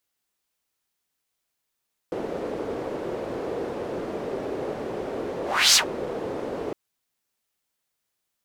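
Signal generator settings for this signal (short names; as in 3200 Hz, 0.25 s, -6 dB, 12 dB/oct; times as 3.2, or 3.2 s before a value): whoosh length 4.61 s, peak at 3.63, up 0.33 s, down 0.11 s, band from 440 Hz, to 5600 Hz, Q 2.4, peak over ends 15.5 dB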